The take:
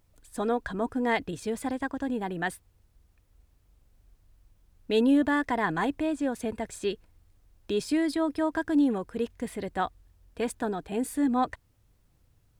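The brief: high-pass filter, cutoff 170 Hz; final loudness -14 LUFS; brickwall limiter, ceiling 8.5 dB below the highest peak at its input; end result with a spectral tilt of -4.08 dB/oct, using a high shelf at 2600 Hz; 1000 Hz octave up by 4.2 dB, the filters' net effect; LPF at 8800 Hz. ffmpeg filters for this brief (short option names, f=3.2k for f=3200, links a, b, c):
-af "highpass=170,lowpass=8.8k,equalizer=f=1k:t=o:g=4.5,highshelf=f=2.6k:g=6.5,volume=15.5dB,alimiter=limit=-3dB:level=0:latency=1"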